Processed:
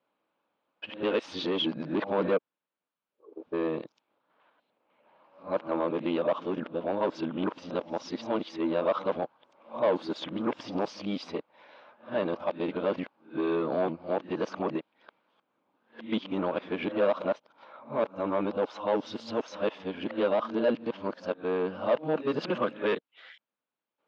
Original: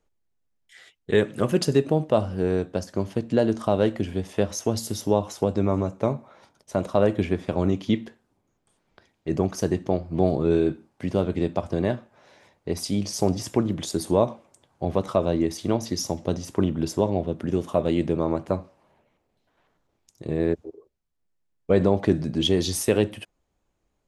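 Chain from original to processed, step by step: whole clip reversed; overdrive pedal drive 19 dB, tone 1600 Hz, clips at -6.5 dBFS; speaker cabinet 250–3900 Hz, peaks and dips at 390 Hz -9 dB, 720 Hz -6 dB, 1900 Hz -7 dB; gain -5 dB

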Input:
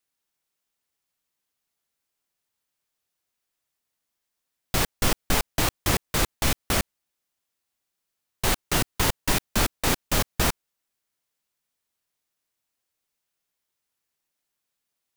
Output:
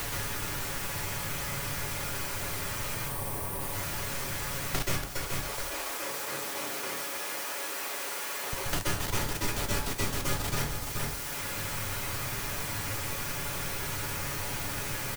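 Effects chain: zero-crossing step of -31 dBFS; 2.94–3.6 spectral gain 1200–8000 Hz -11 dB; 5.03–8.53 HPF 350 Hz 24 dB/oct; comb 7.1 ms, depth 42%; level quantiser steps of 20 dB; flange 0.33 Hz, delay 8.6 ms, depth 6 ms, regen -60%; echo 0.425 s -11 dB; plate-style reverb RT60 0.54 s, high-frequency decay 0.65×, pre-delay 0.115 s, DRR -7.5 dB; three-band squash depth 100%; gain -1 dB

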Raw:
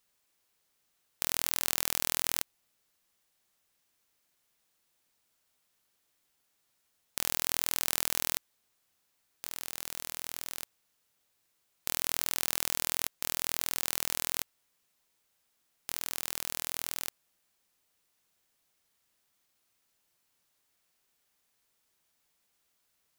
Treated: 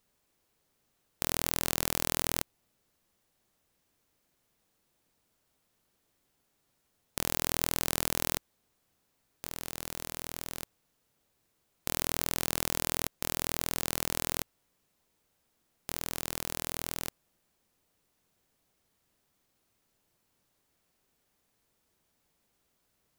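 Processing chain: tilt shelf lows +6 dB, about 760 Hz; gain +4.5 dB

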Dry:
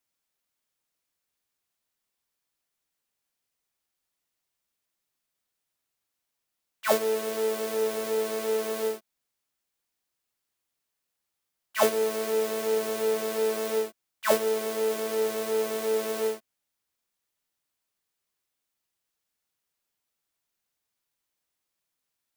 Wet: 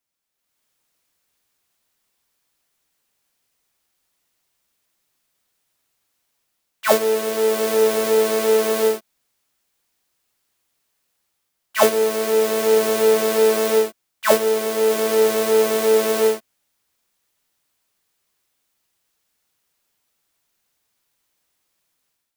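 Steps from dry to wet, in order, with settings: AGC gain up to 11 dB

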